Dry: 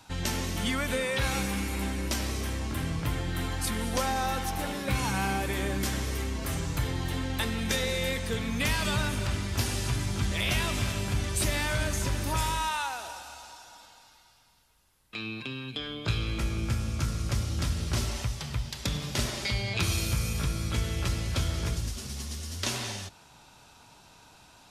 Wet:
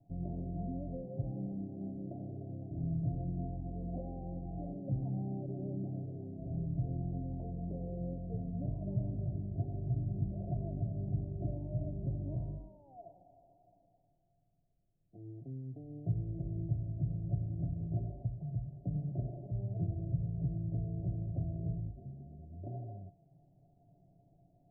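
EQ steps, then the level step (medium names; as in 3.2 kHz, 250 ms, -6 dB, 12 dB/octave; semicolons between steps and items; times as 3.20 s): rippled Chebyshev low-pass 720 Hz, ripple 9 dB; bass shelf 130 Hz +6.5 dB; static phaser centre 330 Hz, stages 8; 0.0 dB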